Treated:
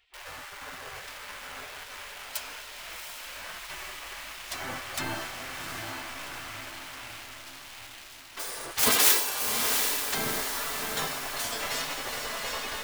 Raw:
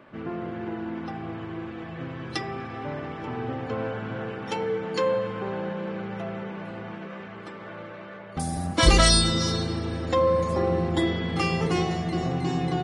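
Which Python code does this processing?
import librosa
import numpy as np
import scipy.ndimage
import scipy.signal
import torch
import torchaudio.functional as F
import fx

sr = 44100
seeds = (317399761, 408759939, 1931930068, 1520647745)

p1 = fx.tracing_dist(x, sr, depth_ms=0.39)
p2 = fx.quant_dither(p1, sr, seeds[0], bits=6, dither='none')
p3 = p1 + (p2 * librosa.db_to_amplitude(-4.5))
p4 = fx.spec_gate(p3, sr, threshold_db=-20, keep='weak')
y = fx.echo_diffused(p4, sr, ms=744, feedback_pct=51, wet_db=-5)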